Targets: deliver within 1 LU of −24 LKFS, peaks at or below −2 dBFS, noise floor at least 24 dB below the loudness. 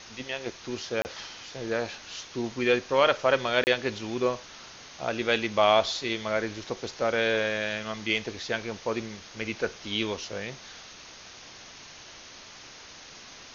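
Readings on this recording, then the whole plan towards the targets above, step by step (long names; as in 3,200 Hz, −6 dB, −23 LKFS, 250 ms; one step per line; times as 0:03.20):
number of dropouts 2; longest dropout 29 ms; background noise floor −47 dBFS; target noise floor −53 dBFS; integrated loudness −28.5 LKFS; sample peak −7.0 dBFS; target loudness −24.0 LKFS
→ repair the gap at 0:01.02/0:03.64, 29 ms
noise reduction from a noise print 6 dB
level +4.5 dB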